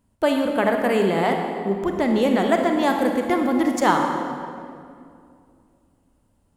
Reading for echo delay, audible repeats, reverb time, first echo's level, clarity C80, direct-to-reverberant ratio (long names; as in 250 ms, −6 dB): no echo audible, no echo audible, 2.4 s, no echo audible, 5.0 dB, 3.0 dB